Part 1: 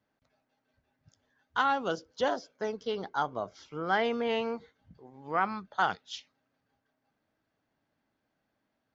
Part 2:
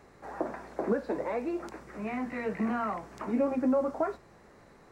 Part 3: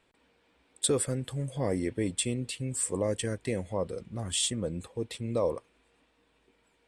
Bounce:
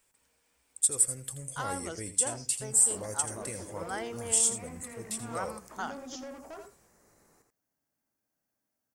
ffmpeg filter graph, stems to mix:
-filter_complex "[0:a]volume=-9.5dB,asplit=2[a][b];[b]volume=-17dB[c];[1:a]asoftclip=type=tanh:threshold=-30.5dB,adelay=2500,volume=-10.5dB,asplit=2[d][e];[e]volume=-6.5dB[f];[2:a]equalizer=f=280:t=o:w=2.2:g=-8,alimiter=limit=-22.5dB:level=0:latency=1:release=259,volume=-5.5dB,asplit=2[g][h];[h]volume=-12dB[i];[c][f][i]amix=inputs=3:normalize=0,aecho=0:1:83:1[j];[a][d][g][j]amix=inputs=4:normalize=0,aexciter=amount=9.5:drive=1.4:freq=5.4k"

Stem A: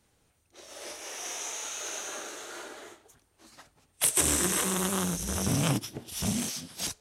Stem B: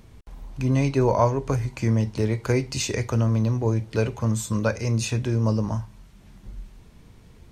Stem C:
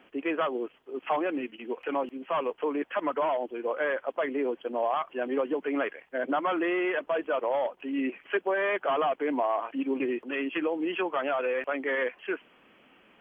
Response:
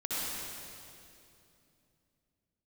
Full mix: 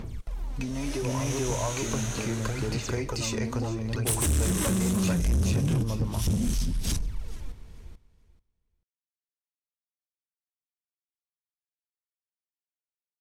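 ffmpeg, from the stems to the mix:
-filter_complex "[0:a]asubboost=boost=11:cutoff=200,acompressor=threshold=-20dB:ratio=6,adelay=50,volume=1.5dB,asplit=2[a][b];[b]volume=-24dB[c];[1:a]acompressor=threshold=-24dB:ratio=6,volume=3dB,asplit=2[d][e];[e]volume=-4.5dB[f];[d]aphaser=in_gain=1:out_gain=1:delay=4.4:decay=0.69:speed=0.72:type=sinusoidal,acompressor=threshold=-29dB:ratio=6,volume=0dB[g];[c][f]amix=inputs=2:normalize=0,aecho=0:1:437|874|1311:1|0.16|0.0256[h];[a][g][h]amix=inputs=3:normalize=0,asubboost=boost=3.5:cutoff=65,asoftclip=type=tanh:threshold=-20dB"

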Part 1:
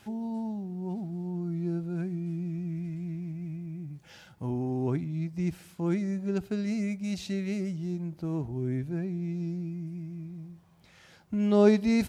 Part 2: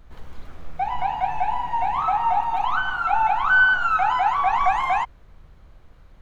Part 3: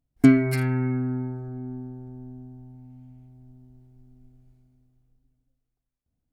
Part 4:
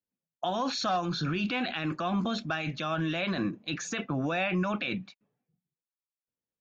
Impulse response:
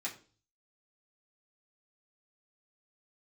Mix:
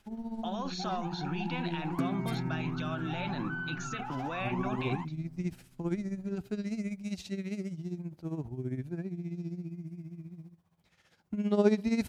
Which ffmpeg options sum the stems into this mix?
-filter_complex "[0:a]tremolo=f=15:d=0.7,volume=-2dB[a];[1:a]volume=-19dB[b];[2:a]adelay=1750,volume=-5dB[c];[3:a]volume=-7.5dB[d];[b][c]amix=inputs=2:normalize=0,acompressor=threshold=-37dB:ratio=2.5,volume=0dB[e];[a][d][e]amix=inputs=3:normalize=0,agate=range=-6dB:threshold=-49dB:ratio=16:detection=peak"

